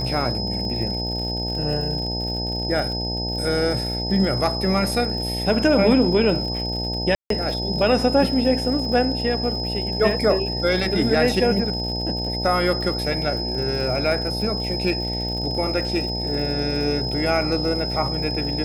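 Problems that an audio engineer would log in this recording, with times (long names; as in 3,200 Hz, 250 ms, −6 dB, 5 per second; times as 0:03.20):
mains buzz 60 Hz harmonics 15 −28 dBFS
surface crackle 97 per second −31 dBFS
whistle 5,100 Hz −27 dBFS
0:07.15–0:07.30: drop-out 153 ms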